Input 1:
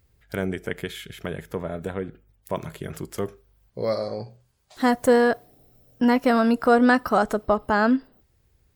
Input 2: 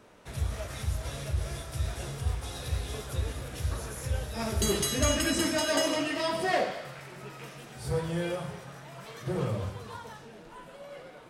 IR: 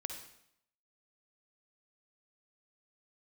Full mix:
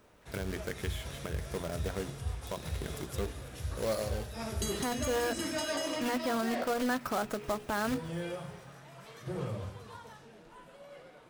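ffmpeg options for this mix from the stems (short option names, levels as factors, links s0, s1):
-filter_complex "[0:a]acrusher=bits=2:mode=log:mix=0:aa=0.000001,bandreject=f=60:t=h:w=6,bandreject=f=120:t=h:w=6,bandreject=f=180:t=h:w=6,bandreject=f=240:t=h:w=6,bandreject=f=300:t=h:w=6,bandreject=f=360:t=h:w=6,bandreject=f=420:t=h:w=6,volume=0.422[s0];[1:a]volume=0.501[s1];[s0][s1]amix=inputs=2:normalize=0,alimiter=limit=0.0708:level=0:latency=1:release=122"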